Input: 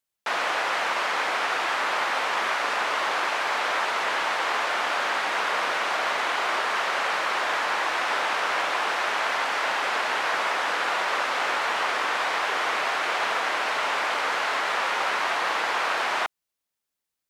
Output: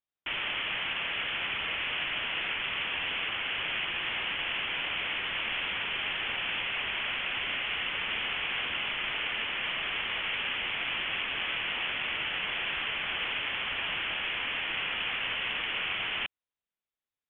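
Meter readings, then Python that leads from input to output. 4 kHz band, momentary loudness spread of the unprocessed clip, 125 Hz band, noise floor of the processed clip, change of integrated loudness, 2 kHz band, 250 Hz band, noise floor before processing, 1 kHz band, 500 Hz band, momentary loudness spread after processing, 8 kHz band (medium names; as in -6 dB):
0.0 dB, 0 LU, no reading, under -85 dBFS, -5.5 dB, -5.5 dB, -5.5 dB, -85 dBFS, -16.0 dB, -14.5 dB, 0 LU, under -40 dB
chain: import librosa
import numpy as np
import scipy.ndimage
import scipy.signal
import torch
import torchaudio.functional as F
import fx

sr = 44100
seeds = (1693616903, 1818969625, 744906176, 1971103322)

y = fx.freq_invert(x, sr, carrier_hz=3800)
y = F.gain(torch.from_numpy(y), -7.0).numpy()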